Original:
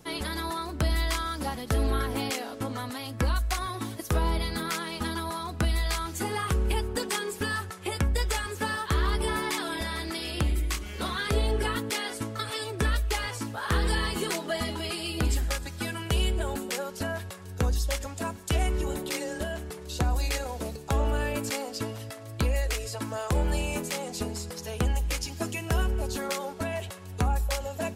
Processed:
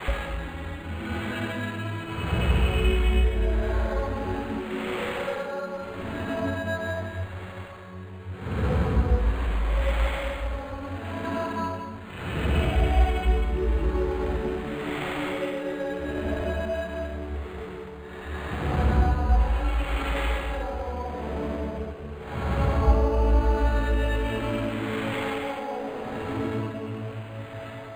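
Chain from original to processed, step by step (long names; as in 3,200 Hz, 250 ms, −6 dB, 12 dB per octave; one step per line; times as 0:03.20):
extreme stretch with random phases 4.2×, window 0.25 s, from 0:15.54
all-pass dispersion lows, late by 83 ms, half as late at 2,200 Hz
linearly interpolated sample-rate reduction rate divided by 8×
level +3.5 dB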